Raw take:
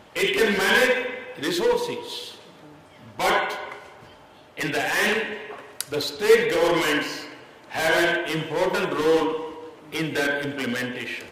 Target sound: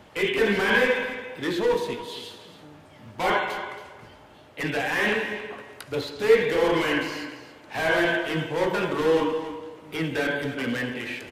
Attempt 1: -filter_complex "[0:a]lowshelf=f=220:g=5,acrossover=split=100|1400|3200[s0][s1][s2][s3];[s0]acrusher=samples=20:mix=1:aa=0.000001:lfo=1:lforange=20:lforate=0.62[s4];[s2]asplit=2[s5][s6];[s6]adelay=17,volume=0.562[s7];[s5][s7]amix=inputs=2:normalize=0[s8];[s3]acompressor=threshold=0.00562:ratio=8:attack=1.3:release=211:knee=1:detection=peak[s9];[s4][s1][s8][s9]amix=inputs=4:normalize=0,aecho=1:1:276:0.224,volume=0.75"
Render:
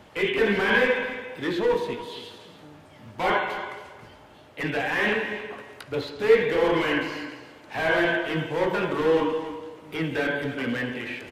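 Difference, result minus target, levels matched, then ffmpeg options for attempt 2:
compression: peak gain reduction +7.5 dB
-filter_complex "[0:a]lowshelf=f=220:g=5,acrossover=split=100|1400|3200[s0][s1][s2][s3];[s0]acrusher=samples=20:mix=1:aa=0.000001:lfo=1:lforange=20:lforate=0.62[s4];[s2]asplit=2[s5][s6];[s6]adelay=17,volume=0.562[s7];[s5][s7]amix=inputs=2:normalize=0[s8];[s3]acompressor=threshold=0.015:ratio=8:attack=1.3:release=211:knee=1:detection=peak[s9];[s4][s1][s8][s9]amix=inputs=4:normalize=0,aecho=1:1:276:0.224,volume=0.75"

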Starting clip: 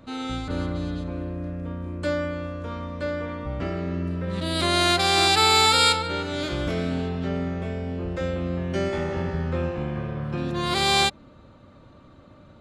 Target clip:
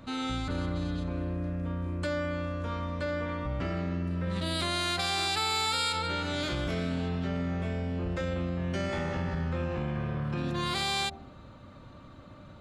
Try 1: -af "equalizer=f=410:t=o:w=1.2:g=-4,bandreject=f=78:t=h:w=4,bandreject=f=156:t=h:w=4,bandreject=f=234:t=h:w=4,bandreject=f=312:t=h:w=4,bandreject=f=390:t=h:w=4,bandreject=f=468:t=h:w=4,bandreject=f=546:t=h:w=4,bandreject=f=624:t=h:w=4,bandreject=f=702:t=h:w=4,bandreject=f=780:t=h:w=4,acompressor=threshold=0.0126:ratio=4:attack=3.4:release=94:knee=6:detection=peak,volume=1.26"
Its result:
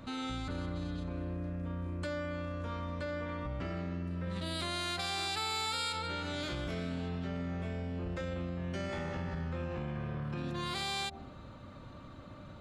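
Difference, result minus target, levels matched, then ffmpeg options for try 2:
compression: peak gain reduction +6 dB
-af "equalizer=f=410:t=o:w=1.2:g=-4,bandreject=f=78:t=h:w=4,bandreject=f=156:t=h:w=4,bandreject=f=234:t=h:w=4,bandreject=f=312:t=h:w=4,bandreject=f=390:t=h:w=4,bandreject=f=468:t=h:w=4,bandreject=f=546:t=h:w=4,bandreject=f=624:t=h:w=4,bandreject=f=702:t=h:w=4,bandreject=f=780:t=h:w=4,acompressor=threshold=0.0316:ratio=4:attack=3.4:release=94:knee=6:detection=peak,volume=1.26"

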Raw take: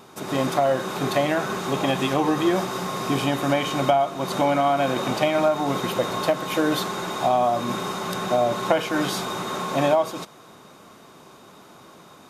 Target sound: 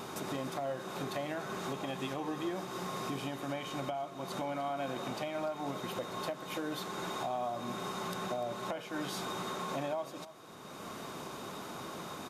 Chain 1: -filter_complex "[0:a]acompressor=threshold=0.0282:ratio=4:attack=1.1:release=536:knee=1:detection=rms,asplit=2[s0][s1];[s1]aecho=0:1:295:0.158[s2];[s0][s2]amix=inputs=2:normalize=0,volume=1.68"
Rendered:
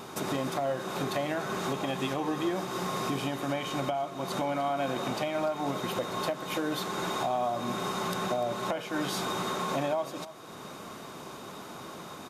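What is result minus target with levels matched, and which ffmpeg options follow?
compression: peak gain reduction -6.5 dB
-filter_complex "[0:a]acompressor=threshold=0.0106:ratio=4:attack=1.1:release=536:knee=1:detection=rms,asplit=2[s0][s1];[s1]aecho=0:1:295:0.158[s2];[s0][s2]amix=inputs=2:normalize=0,volume=1.68"

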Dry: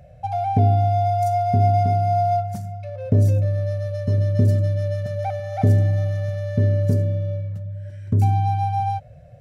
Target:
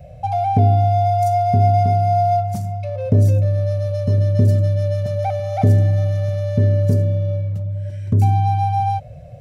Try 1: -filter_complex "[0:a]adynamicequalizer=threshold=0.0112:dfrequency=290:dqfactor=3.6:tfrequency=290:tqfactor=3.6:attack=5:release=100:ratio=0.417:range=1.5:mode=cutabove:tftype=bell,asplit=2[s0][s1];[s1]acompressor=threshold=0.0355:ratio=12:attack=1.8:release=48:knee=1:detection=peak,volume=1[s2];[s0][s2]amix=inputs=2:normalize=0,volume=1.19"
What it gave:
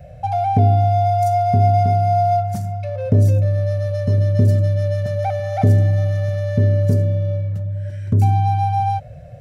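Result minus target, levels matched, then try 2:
2 kHz band +3.0 dB
-filter_complex "[0:a]adynamicequalizer=threshold=0.0112:dfrequency=290:dqfactor=3.6:tfrequency=290:tqfactor=3.6:attack=5:release=100:ratio=0.417:range=1.5:mode=cutabove:tftype=bell,asplit=2[s0][s1];[s1]acompressor=threshold=0.0355:ratio=12:attack=1.8:release=48:knee=1:detection=peak,asuperstop=centerf=1600:order=12:qfactor=6.4[s2];[s0][s2]amix=inputs=2:normalize=0,volume=1.19"

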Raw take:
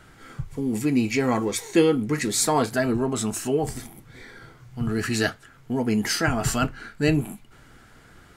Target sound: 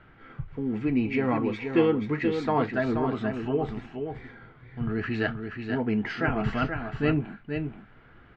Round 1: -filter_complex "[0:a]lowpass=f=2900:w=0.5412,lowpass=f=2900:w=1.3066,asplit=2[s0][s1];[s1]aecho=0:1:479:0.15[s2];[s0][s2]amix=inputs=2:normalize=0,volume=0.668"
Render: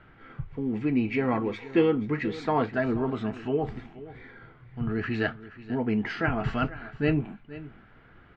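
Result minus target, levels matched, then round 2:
echo-to-direct -10 dB
-filter_complex "[0:a]lowpass=f=2900:w=0.5412,lowpass=f=2900:w=1.3066,asplit=2[s0][s1];[s1]aecho=0:1:479:0.473[s2];[s0][s2]amix=inputs=2:normalize=0,volume=0.668"

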